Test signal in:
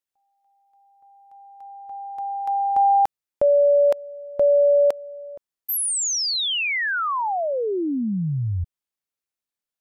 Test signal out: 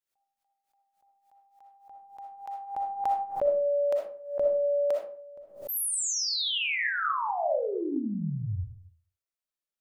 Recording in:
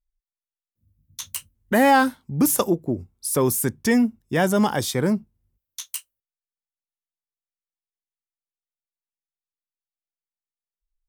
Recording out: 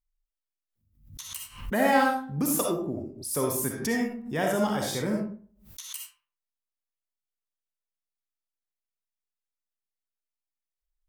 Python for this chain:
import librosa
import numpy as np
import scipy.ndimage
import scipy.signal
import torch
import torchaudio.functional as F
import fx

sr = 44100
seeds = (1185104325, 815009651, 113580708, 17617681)

y = fx.hum_notches(x, sr, base_hz=60, count=6)
y = fx.rev_freeverb(y, sr, rt60_s=0.46, hf_ratio=0.6, predelay_ms=20, drr_db=-0.5)
y = fx.pre_swell(y, sr, db_per_s=110.0)
y = y * 10.0 ** (-8.5 / 20.0)